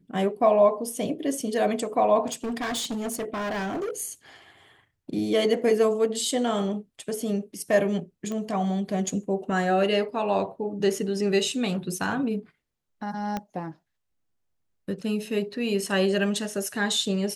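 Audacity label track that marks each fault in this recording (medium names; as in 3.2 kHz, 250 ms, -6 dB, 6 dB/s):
2.260000	4.020000	clipped -26.5 dBFS
8.320000	8.320000	pop -21 dBFS
13.370000	13.370000	pop -16 dBFS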